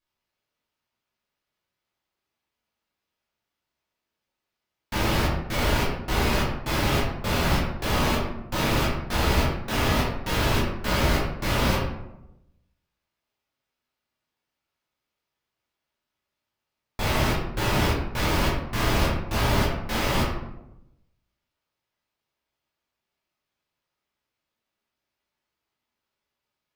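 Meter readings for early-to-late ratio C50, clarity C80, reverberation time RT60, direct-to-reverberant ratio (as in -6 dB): 2.0 dB, 5.0 dB, 0.90 s, -7.0 dB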